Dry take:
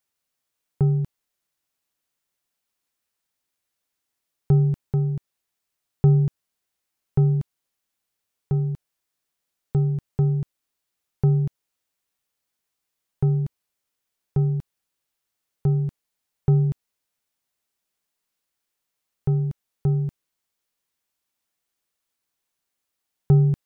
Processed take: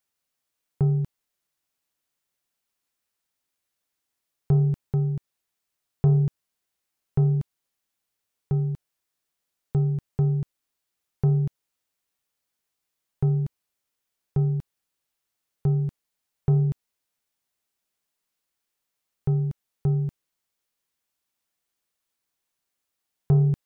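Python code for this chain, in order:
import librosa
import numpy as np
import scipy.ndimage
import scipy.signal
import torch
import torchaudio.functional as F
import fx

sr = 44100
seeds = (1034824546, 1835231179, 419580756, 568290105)

y = 10.0 ** (-10.5 / 20.0) * np.tanh(x / 10.0 ** (-10.5 / 20.0))
y = y * 10.0 ** (-1.0 / 20.0)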